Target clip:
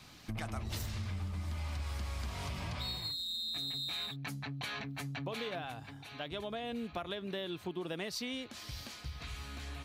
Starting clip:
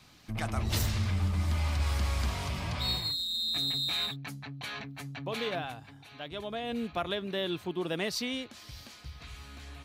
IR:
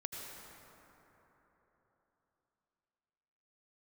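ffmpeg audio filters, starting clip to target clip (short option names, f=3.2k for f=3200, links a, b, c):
-af "acompressor=threshold=-39dB:ratio=6,volume=2.5dB"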